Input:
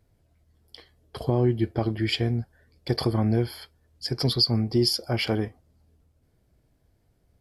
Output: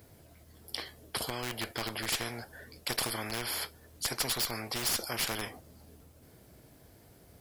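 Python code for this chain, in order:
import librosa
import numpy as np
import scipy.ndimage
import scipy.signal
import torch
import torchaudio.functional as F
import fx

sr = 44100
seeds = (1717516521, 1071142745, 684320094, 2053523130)

p1 = fx.highpass(x, sr, hz=190.0, slope=6)
p2 = fx.high_shelf(p1, sr, hz=11000.0, db=11.0)
p3 = fx.schmitt(p2, sr, flips_db=-20.0)
p4 = p2 + (p3 * 10.0 ** (-9.0 / 20.0))
p5 = fx.spectral_comp(p4, sr, ratio=4.0)
y = p5 * 10.0 ** (-7.0 / 20.0)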